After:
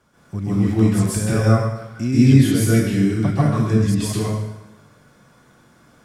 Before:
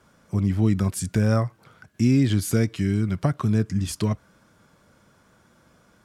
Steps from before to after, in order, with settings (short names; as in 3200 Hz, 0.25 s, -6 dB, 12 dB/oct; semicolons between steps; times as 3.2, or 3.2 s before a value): plate-style reverb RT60 0.98 s, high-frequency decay 0.9×, pre-delay 0.12 s, DRR -9 dB; gain -3.5 dB